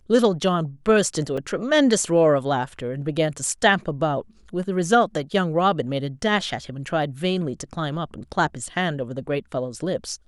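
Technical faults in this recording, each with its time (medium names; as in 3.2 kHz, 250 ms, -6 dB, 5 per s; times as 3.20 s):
1.37–1.38 s: dropout 5.6 ms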